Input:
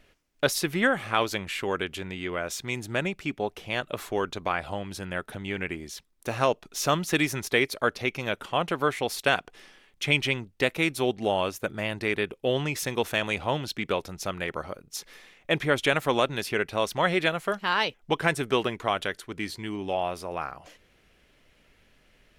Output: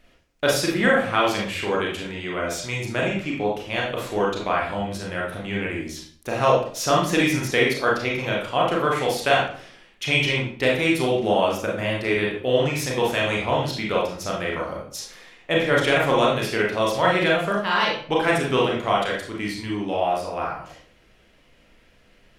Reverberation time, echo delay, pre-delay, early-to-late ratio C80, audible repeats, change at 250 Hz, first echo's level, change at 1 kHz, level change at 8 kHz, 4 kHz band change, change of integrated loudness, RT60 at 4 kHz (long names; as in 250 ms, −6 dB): 0.50 s, no echo audible, 27 ms, 8.0 dB, no echo audible, +5.5 dB, no echo audible, +6.0 dB, +3.0 dB, +4.0 dB, +5.5 dB, 0.40 s